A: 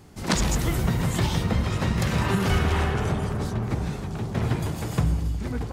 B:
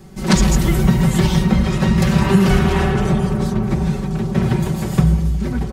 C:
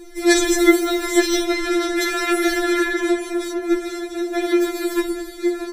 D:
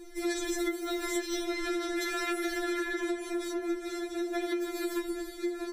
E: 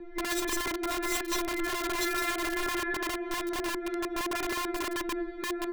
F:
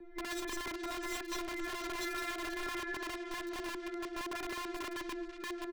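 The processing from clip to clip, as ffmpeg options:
-filter_complex "[0:a]aecho=1:1:5.3:0.87,acrossover=split=370|4300[s0][s1][s2];[s0]acontrast=35[s3];[s3][s1][s2]amix=inputs=3:normalize=0,volume=1.41"
-af "afftfilt=real='re*4*eq(mod(b,16),0)':imag='im*4*eq(mod(b,16),0)':win_size=2048:overlap=0.75,volume=1.88"
-af "acompressor=threshold=0.0891:ratio=10,volume=0.422"
-filter_complex "[0:a]acrossover=split=260|1000|2400[s0][s1][s2][s3];[s1]aeval=exprs='(mod(44.7*val(0)+1,2)-1)/44.7':c=same[s4];[s3]acrusher=bits=5:mix=0:aa=0.000001[s5];[s0][s4][s2][s5]amix=inputs=4:normalize=0,volume=1.58"
-filter_complex "[0:a]acrossover=split=280|1200|6700[s0][s1][s2][s3];[s2]aecho=1:1:488|976|1464|1952|2440:0.299|0.14|0.0659|0.031|0.0146[s4];[s3]asoftclip=type=tanh:threshold=0.0126[s5];[s0][s1][s4][s5]amix=inputs=4:normalize=0,volume=0.398"

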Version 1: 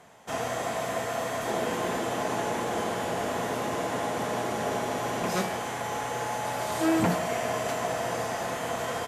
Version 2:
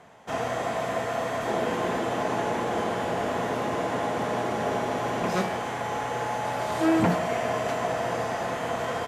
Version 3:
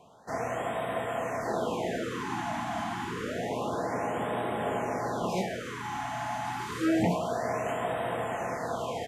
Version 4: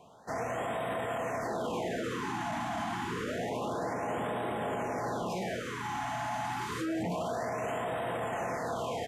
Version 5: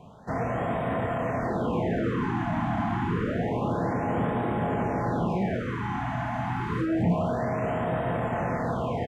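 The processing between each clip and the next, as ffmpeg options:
-af "highshelf=f=5700:g=-12,volume=1.33"
-af "afftfilt=real='re*(1-between(b*sr/1024,430*pow(5500/430,0.5+0.5*sin(2*PI*0.28*pts/sr))/1.41,430*pow(5500/430,0.5+0.5*sin(2*PI*0.28*pts/sr))*1.41))':imag='im*(1-between(b*sr/1024,430*pow(5500/430,0.5+0.5*sin(2*PI*0.28*pts/sr))/1.41,430*pow(5500/430,0.5+0.5*sin(2*PI*0.28*pts/sr))*1.41))':win_size=1024:overlap=0.75,volume=0.668"
-af "alimiter=level_in=1.33:limit=0.0631:level=0:latency=1:release=10,volume=0.75"
-filter_complex "[0:a]bass=f=250:g=12,treble=f=4000:g=-8,asplit=2[s0][s1];[s1]adelay=30,volume=0.422[s2];[s0][s2]amix=inputs=2:normalize=0,acrossover=split=2700[s3][s4];[s4]acompressor=threshold=0.001:ratio=4:attack=1:release=60[s5];[s3][s5]amix=inputs=2:normalize=0,volume=1.5"

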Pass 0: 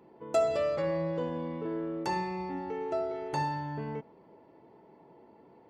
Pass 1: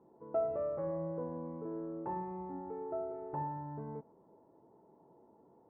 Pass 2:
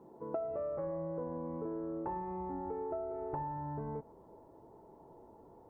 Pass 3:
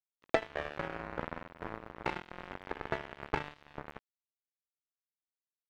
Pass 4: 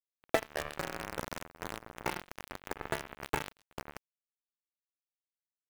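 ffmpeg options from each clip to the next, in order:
-af "lowpass=f=1200:w=0.5412,lowpass=f=1200:w=1.3066,volume=0.473"
-af "acompressor=threshold=0.00794:ratio=10,asubboost=boost=7:cutoff=69,volume=2.37"
-af "acrusher=bits=4:mix=0:aa=0.5,volume=3.35"
-af "aresample=16000,aresample=44100,acrusher=bits=6:dc=4:mix=0:aa=0.000001"

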